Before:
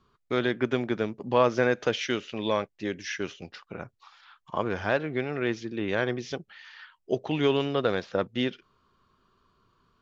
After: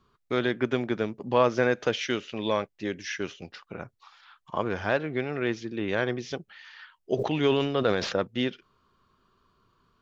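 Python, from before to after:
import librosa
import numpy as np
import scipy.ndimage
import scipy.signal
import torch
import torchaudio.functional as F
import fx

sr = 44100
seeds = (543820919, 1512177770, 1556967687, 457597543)

y = fx.sustainer(x, sr, db_per_s=54.0, at=(7.17, 8.17), fade=0.02)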